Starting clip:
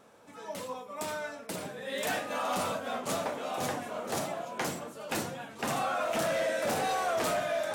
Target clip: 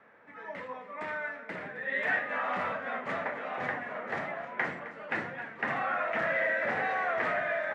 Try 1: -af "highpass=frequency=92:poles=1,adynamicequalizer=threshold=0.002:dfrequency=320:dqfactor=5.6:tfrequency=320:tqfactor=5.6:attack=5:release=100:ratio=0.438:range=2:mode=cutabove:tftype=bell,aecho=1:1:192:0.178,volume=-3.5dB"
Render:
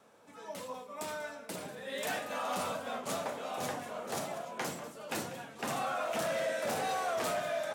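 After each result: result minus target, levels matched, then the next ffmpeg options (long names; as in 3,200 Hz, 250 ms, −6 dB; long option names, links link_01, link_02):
2,000 Hz band −6.5 dB; echo 71 ms early
-af "highpass=frequency=92:poles=1,adynamicequalizer=threshold=0.002:dfrequency=320:dqfactor=5.6:tfrequency=320:tqfactor=5.6:attack=5:release=100:ratio=0.438:range=2:mode=cutabove:tftype=bell,lowpass=frequency=1900:width_type=q:width=5.7,aecho=1:1:192:0.178,volume=-3.5dB"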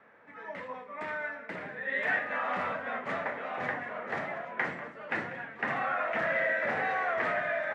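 echo 71 ms early
-af "highpass=frequency=92:poles=1,adynamicequalizer=threshold=0.002:dfrequency=320:dqfactor=5.6:tfrequency=320:tqfactor=5.6:attack=5:release=100:ratio=0.438:range=2:mode=cutabove:tftype=bell,lowpass=frequency=1900:width_type=q:width=5.7,aecho=1:1:263:0.178,volume=-3.5dB"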